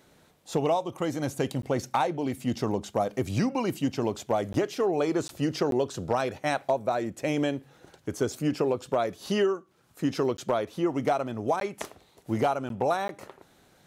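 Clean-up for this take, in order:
clipped peaks rebuilt −15 dBFS
repair the gap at 0:01.62/0:04.53/0:05.28/0:05.71/0:10.37/0:11.60/0:12.69/0:13.08, 12 ms

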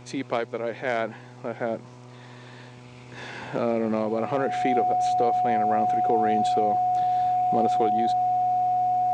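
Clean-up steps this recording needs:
hum removal 123.4 Hz, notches 8
notch filter 730 Hz, Q 30

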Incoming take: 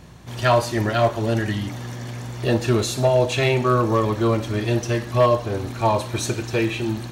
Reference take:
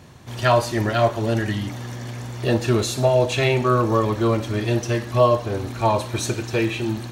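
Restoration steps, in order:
clipped peaks rebuilt −9.5 dBFS
hum removal 56.3 Hz, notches 3

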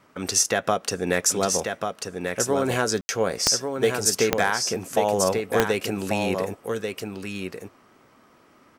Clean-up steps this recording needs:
click removal
ambience match 0:03.01–0:03.09
echo removal 1,140 ms −5.5 dB

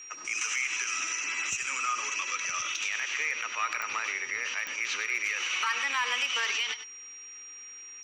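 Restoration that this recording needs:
clipped peaks rebuilt −20.5 dBFS
click removal
notch filter 5,700 Hz, Q 30
echo removal 99 ms −11.5 dB

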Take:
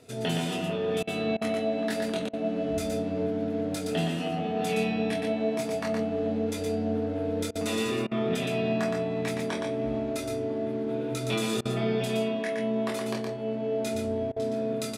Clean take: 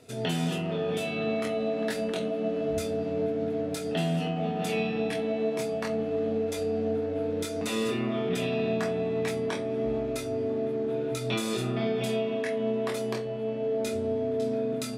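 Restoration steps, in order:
repair the gap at 0:01.03/0:01.37/0:02.29/0:07.51/0:08.07/0:11.61/0:14.32, 42 ms
echo removal 118 ms −4.5 dB

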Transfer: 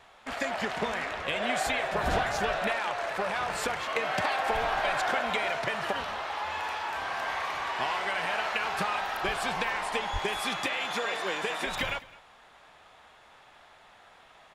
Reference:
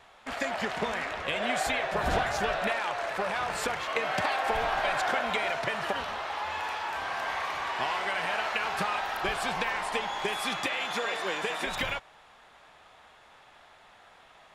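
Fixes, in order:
clipped peaks rebuilt −17 dBFS
0:10.12–0:10.24: high-pass filter 140 Hz 24 dB per octave
echo removal 209 ms −21 dB

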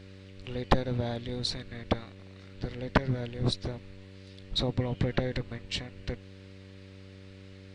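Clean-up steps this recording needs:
clipped peaks rebuilt −10 dBFS
hum removal 95.8 Hz, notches 6

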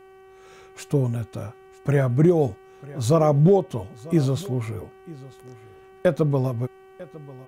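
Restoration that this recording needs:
hum removal 381.5 Hz, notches 8
echo removal 946 ms −20 dB

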